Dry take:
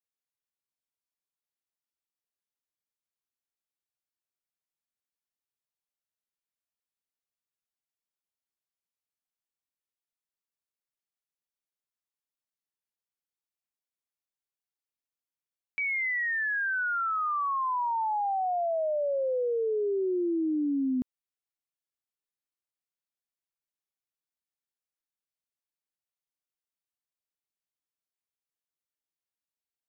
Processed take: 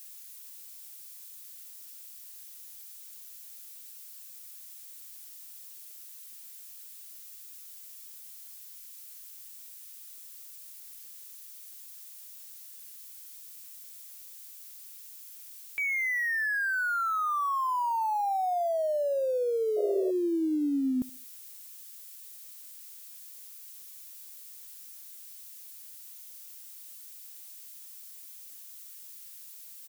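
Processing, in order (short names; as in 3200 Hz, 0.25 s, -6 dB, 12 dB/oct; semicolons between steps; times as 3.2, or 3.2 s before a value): switching spikes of -40.5 dBFS; feedback echo 74 ms, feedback 35%, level -21 dB; painted sound noise, 19.76–20.11, 340–700 Hz -34 dBFS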